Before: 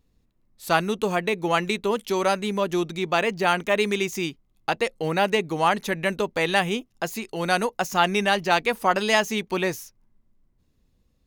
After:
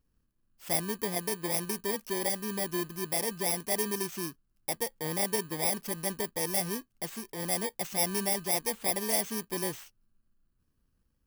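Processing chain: FFT order left unsorted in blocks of 32 samples; wow and flutter 17 cents; gain -8 dB

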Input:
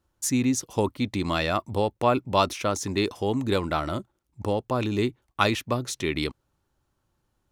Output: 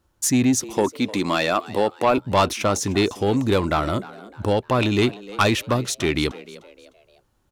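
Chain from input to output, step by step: 0.74–2.18 HPF 200 Hz 12 dB/oct; 4.51–5.42 bell 2800 Hz +6 dB 2.1 oct; soft clip -16.5 dBFS, distortion -14 dB; frequency-shifting echo 0.304 s, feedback 39%, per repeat +95 Hz, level -18.5 dB; gain +6.5 dB

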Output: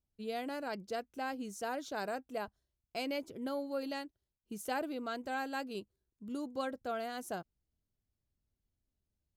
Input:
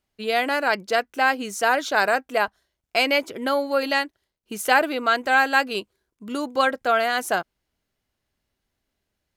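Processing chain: EQ curve 100 Hz 0 dB, 1900 Hz -21 dB, 5700 Hz -13 dB; gain -3 dB

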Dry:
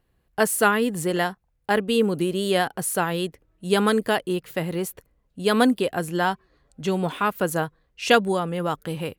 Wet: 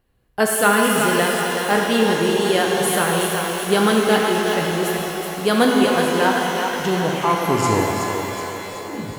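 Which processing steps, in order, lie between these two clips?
tape stop at the end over 2.29 s; thinning echo 0.373 s, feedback 53%, high-pass 330 Hz, level -6 dB; shimmer reverb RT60 3 s, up +12 st, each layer -8 dB, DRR -0.5 dB; gain +1.5 dB

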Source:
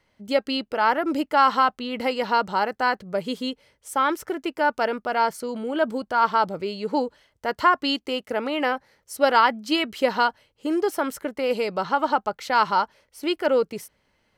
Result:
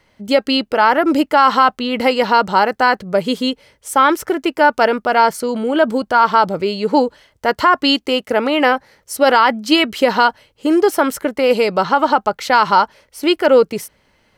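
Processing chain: maximiser +11 dB; gain -1 dB

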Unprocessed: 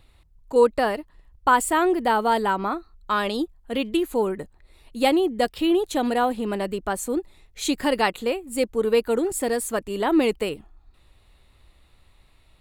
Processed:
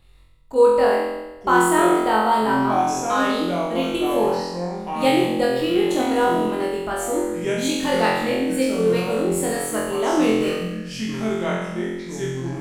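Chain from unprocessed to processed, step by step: echoes that change speed 0.733 s, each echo -5 st, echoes 2, each echo -6 dB; flutter echo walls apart 3.9 m, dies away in 1 s; reverb RT60 0.80 s, pre-delay 85 ms, DRR 15 dB; gain -3.5 dB

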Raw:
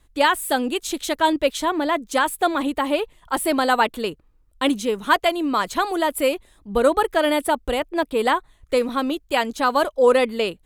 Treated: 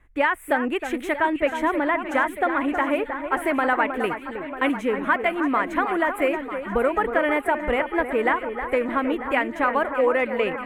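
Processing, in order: resonant high shelf 3000 Hz -13 dB, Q 3; compressor 3:1, threshold -19 dBFS, peak gain reduction 8 dB; echo with dull and thin repeats by turns 0.315 s, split 2100 Hz, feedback 79%, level -8.5 dB

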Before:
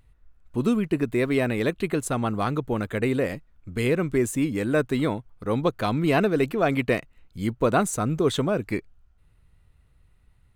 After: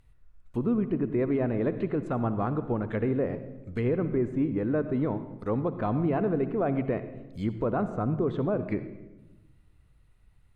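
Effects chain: treble ducked by the level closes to 1100 Hz, closed at -22 dBFS; limiter -16 dBFS, peak gain reduction 5.5 dB; on a send: reverb RT60 1.0 s, pre-delay 60 ms, DRR 11 dB; on the sum: gain -2.5 dB

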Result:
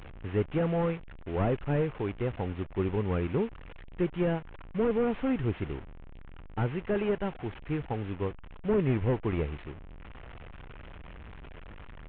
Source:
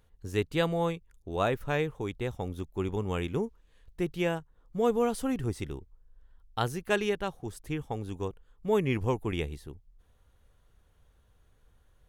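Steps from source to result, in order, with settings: delta modulation 16 kbps, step -41 dBFS; gain +2 dB

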